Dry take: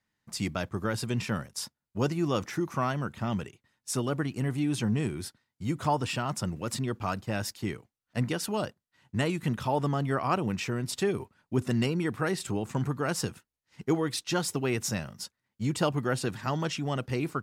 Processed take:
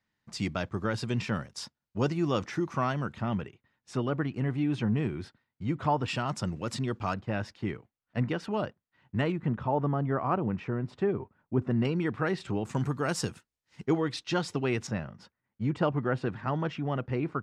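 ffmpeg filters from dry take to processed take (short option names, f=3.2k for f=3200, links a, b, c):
-af "asetnsamples=n=441:p=0,asendcmd='3.21 lowpass f 2800;6.08 lowpass f 6000;7.14 lowpass f 2600;9.32 lowpass f 1400;11.85 lowpass f 3400;12.65 lowpass f 9000;13.86 lowpass f 4300;14.87 lowpass f 2000',lowpass=5.5k"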